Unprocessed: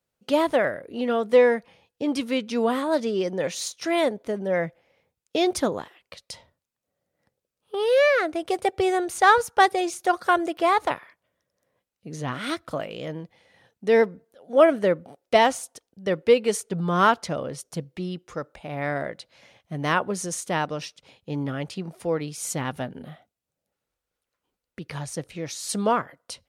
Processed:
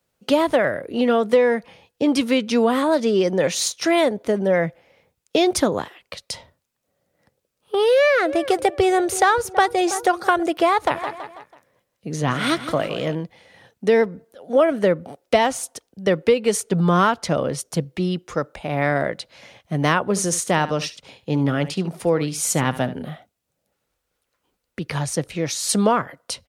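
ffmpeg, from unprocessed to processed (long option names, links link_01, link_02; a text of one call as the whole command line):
ffmpeg -i in.wav -filter_complex "[0:a]asettb=1/sr,asplit=3[link_01][link_02][link_03];[link_01]atrim=end=7.934[link_04];[link_02]atrim=start=7.93:end=10.43,asetpts=PTS-STARTPTS,afade=type=in:duration=0.004:curve=qsin,afade=type=out:start_time=2.496:duration=0.004:curve=qsin,asplit=2[link_05][link_06];[link_06]adelay=326,lowpass=frequency=980:poles=1,volume=-16.5dB,asplit=2[link_07][link_08];[link_08]adelay=326,lowpass=frequency=980:poles=1,volume=0.52,asplit=2[link_09][link_10];[link_10]adelay=326,lowpass=frequency=980:poles=1,volume=0.52,asplit=2[link_11][link_12];[link_12]adelay=326,lowpass=frequency=980:poles=1,volume=0.52,asplit=2[link_13][link_14];[link_14]adelay=326,lowpass=frequency=980:poles=1,volume=0.52[link_15];[link_05][link_07][link_09][link_11][link_13][link_15]amix=inputs=6:normalize=0,atrim=end_sample=110250[link_16];[link_03]atrim=start=10.426[link_17];[link_04][link_16]acrossfade=duration=0.004:curve1=hsin:curve2=qsin[link_18];[link_18][link_17]acrossfade=duration=0.004:curve1=qsin:curve2=hsin,asplit=3[link_19][link_20][link_21];[link_19]afade=type=out:start_time=10.93:duration=0.02[link_22];[link_20]aecho=1:1:164|328|492|656:0.224|0.101|0.0453|0.0204,afade=type=in:start_time=10.93:duration=0.02,afade=type=out:start_time=13.14:duration=0.02[link_23];[link_21]afade=type=in:start_time=13.14:duration=0.02[link_24];[link_22][link_23][link_24]amix=inputs=3:normalize=0,asettb=1/sr,asplit=3[link_25][link_26][link_27];[link_25]atrim=end=20.094[link_28];[link_26]atrim=start=20.09:end=23.05,asetpts=PTS-STARTPTS,afade=type=in:duration=0.004:curve=qsin,afade=type=out:start_time=2.956:duration=0.004:curve=qsin,aecho=1:1:71:0.168,atrim=end_sample=130536[link_29];[link_27]atrim=start=23.046[link_30];[link_28][link_29]acrossfade=duration=0.004:curve1=hsin:curve2=qsin[link_31];[link_31][link_30]acrossfade=duration=0.004:curve1=qsin:curve2=hsin,acrossover=split=150[link_32][link_33];[link_33]acompressor=threshold=-23dB:ratio=4[link_34];[link_32][link_34]amix=inputs=2:normalize=0,volume=8.5dB" out.wav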